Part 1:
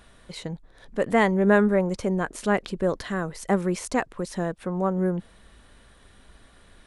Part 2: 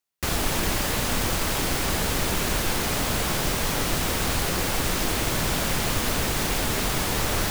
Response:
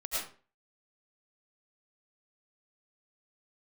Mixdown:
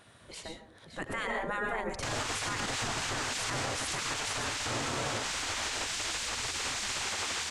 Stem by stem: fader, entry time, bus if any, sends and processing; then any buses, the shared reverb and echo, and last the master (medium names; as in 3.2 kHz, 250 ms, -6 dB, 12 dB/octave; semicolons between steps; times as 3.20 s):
-3.5 dB, 0.00 s, send -8 dB, echo send -11 dB, none
-5.5 dB, 1.80 s, send -9.5 dB, echo send -5 dB, Chebyshev band-pass 120–7700 Hz, order 3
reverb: on, RT60 0.40 s, pre-delay 65 ms
echo: delay 566 ms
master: spectral gate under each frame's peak -10 dB weak; peaking EQ 100 Hz +5 dB 1.4 oct; peak limiter -24 dBFS, peak gain reduction 8 dB